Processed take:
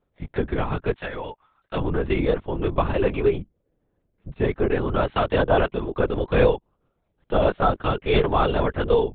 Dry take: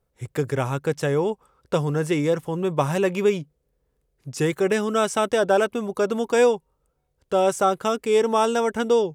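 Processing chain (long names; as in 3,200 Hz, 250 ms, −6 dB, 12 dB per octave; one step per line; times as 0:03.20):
0:00.95–0:01.77: high-pass filter 850 Hz 12 dB per octave
0:03.16–0:05.09: high-shelf EQ 2,900 Hz −11 dB
linear-prediction vocoder at 8 kHz whisper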